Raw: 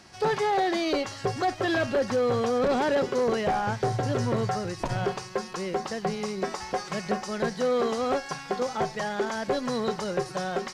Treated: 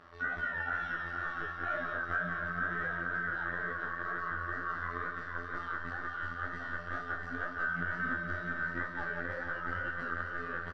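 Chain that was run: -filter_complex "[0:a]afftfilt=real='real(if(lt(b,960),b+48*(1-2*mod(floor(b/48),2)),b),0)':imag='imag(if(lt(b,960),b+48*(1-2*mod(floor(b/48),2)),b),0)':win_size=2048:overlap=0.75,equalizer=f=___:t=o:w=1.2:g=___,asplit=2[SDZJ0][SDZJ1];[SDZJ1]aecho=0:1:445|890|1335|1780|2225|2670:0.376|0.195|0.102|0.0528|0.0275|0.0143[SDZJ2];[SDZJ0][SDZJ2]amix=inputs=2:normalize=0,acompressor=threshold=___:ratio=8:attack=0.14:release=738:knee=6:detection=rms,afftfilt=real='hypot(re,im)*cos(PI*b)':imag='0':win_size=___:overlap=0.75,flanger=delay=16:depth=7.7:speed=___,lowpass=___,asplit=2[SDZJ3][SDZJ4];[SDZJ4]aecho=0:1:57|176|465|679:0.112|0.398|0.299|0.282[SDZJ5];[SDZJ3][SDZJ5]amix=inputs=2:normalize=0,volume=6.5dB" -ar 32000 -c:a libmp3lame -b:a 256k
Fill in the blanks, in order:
690, -2.5, -26dB, 2048, 2.1, 1500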